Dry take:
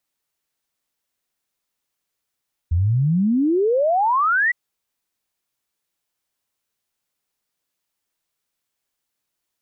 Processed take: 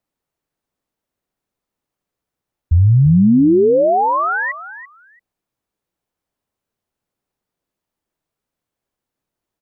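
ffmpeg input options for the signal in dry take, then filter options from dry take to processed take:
-f lavfi -i "aevalsrc='0.178*clip(min(t,1.81-t)/0.01,0,1)*sin(2*PI*79*1.81/log(2000/79)*(exp(log(2000/79)*t/1.81)-1))':duration=1.81:sample_rate=44100"
-af "tiltshelf=frequency=1300:gain=8,aecho=1:1:338|676:0.2|0.0339"

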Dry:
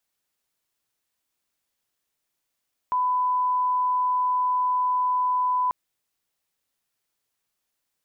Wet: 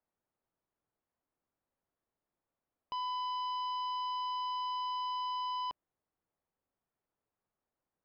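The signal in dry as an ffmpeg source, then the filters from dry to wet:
-f lavfi -i "sine=frequency=1000:duration=2.79:sample_rate=44100,volume=-1.94dB"
-af "lowpass=1000,aresample=11025,asoftclip=type=tanh:threshold=-35.5dB,aresample=44100"

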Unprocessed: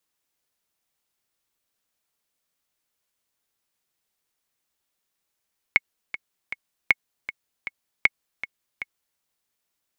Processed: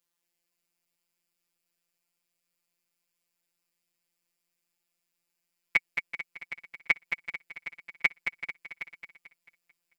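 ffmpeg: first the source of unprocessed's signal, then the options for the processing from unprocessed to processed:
-f lavfi -i "aevalsrc='pow(10,(-2.5-14.5*gte(mod(t,3*60/157),60/157))/20)*sin(2*PI*2190*mod(t,60/157))*exp(-6.91*mod(t,60/157)/0.03)':duration=3.43:sample_rate=44100"
-filter_complex "[0:a]afftfilt=real='hypot(re,im)*cos(PI*b)':imag='0':win_size=1024:overlap=0.75,asplit=2[link_01][link_02];[link_02]aecho=0:1:221|442|663|884|1105:0.422|0.198|0.0932|0.0438|0.0206[link_03];[link_01][link_03]amix=inputs=2:normalize=0"

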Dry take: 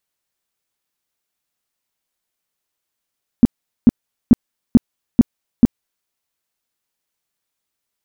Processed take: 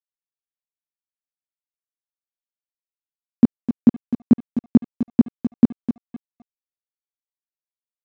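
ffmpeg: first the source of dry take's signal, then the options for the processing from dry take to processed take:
-f lavfi -i "aevalsrc='0.75*sin(2*PI*237*mod(t,0.44))*lt(mod(t,0.44),5/237)':duration=2.64:sample_rate=44100"
-af "highpass=160,aecho=1:1:256|512|768:0.299|0.0836|0.0234,aresample=16000,aeval=exprs='sgn(val(0))*max(abs(val(0))-0.0075,0)':channel_layout=same,aresample=44100"

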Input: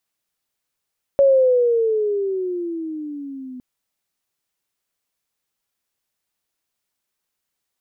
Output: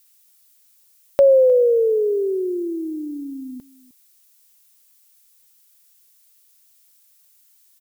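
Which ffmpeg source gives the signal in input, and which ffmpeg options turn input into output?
-f lavfi -i "aevalsrc='pow(10,(-9.5-22*t/2.41)/20)*sin(2*PI*560*2.41/(-14*log(2)/12)*(exp(-14*log(2)/12*t/2.41)-1))':duration=2.41:sample_rate=44100"
-filter_complex "[0:a]crystalizer=i=9.5:c=0,asplit=2[link_01][link_02];[link_02]adelay=309,volume=-19dB,highshelf=frequency=4000:gain=-6.95[link_03];[link_01][link_03]amix=inputs=2:normalize=0"

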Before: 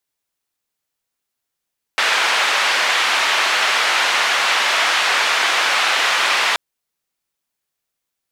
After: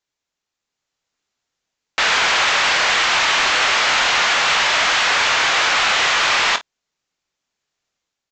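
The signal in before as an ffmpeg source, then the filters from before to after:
-f lavfi -i "anoisesrc=color=white:duration=4.58:sample_rate=44100:seed=1,highpass=frequency=840,lowpass=frequency=2700,volume=-1.9dB"
-af "dynaudnorm=framelen=610:gausssize=3:maxgain=5.5dB,aresample=16000,asoftclip=type=tanh:threshold=-12dB,aresample=44100,aecho=1:1:24|52:0.299|0.15"

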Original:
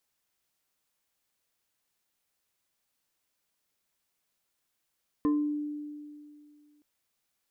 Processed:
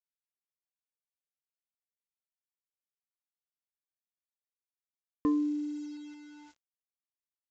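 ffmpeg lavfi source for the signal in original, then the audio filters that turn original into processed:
-f lavfi -i "aevalsrc='0.0841*pow(10,-3*t/2.32)*sin(2*PI*296*t+0.55*pow(10,-3*t/0.46)*sin(2*PI*2.51*296*t))':duration=1.57:sample_rate=44100"
-af "acrusher=bits=8:mix=0:aa=0.000001,aresample=16000,aresample=44100"

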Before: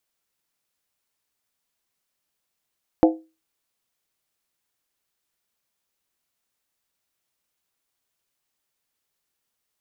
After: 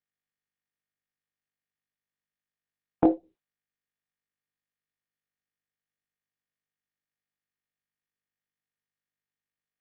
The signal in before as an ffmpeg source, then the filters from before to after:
-f lavfi -i "aevalsrc='0.355*pow(10,-3*t/0.29)*sin(2*PI*321*t)+0.224*pow(10,-3*t/0.23)*sin(2*PI*511.7*t)+0.141*pow(10,-3*t/0.198)*sin(2*PI*685.7*t)+0.0891*pow(10,-3*t/0.191)*sin(2*PI*737*t)+0.0562*pow(10,-3*t/0.178)*sin(2*PI*851.6*t)':duration=0.63:sample_rate=44100"
-af "afftdn=noise_reduction=24:noise_floor=-48,flanger=delay=19.5:depth=2.6:speed=1.8" -ar 48000 -c:a libopus -b:a 6k

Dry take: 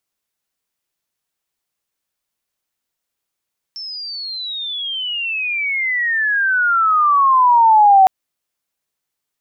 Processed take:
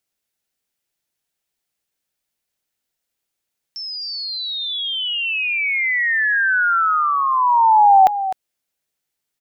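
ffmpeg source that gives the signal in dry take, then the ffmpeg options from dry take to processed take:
-f lavfi -i "aevalsrc='pow(10,(-26.5+21*t/4.31)/20)*sin(2*PI*5400*4.31/log(750/5400)*(exp(log(750/5400)*t/4.31)-1))':duration=4.31:sample_rate=44100"
-filter_complex "[0:a]equalizer=frequency=1100:width=3.2:gain=-6,asplit=2[link_01][link_02];[link_02]aecho=0:1:255:0.266[link_03];[link_01][link_03]amix=inputs=2:normalize=0"

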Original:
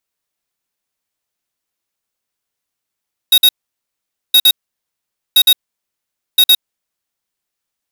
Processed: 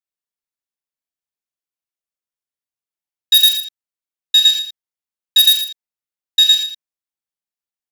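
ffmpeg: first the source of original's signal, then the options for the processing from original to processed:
-f lavfi -i "aevalsrc='0.422*(2*lt(mod(3770*t,1),0.5)-1)*clip(min(mod(mod(t,1.02),0.11),0.06-mod(mod(t,1.02),0.11))/0.005,0,1)*lt(mod(t,1.02),0.22)':duration=4.08:sample_rate=44100"
-filter_complex "[0:a]asplit=2[link_01][link_02];[link_02]aecho=0:1:42|83:0.501|0.376[link_03];[link_01][link_03]amix=inputs=2:normalize=0,afwtdn=0.0794,asplit=2[link_04][link_05];[link_05]aecho=0:1:115:0.251[link_06];[link_04][link_06]amix=inputs=2:normalize=0"

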